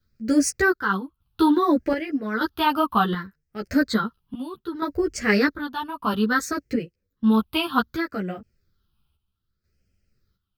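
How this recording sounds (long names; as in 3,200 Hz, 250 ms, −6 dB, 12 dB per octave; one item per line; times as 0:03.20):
phaser sweep stages 6, 0.63 Hz, lowest notch 500–1,000 Hz
chopped level 0.83 Hz, depth 65%, duty 60%
a shimmering, thickened sound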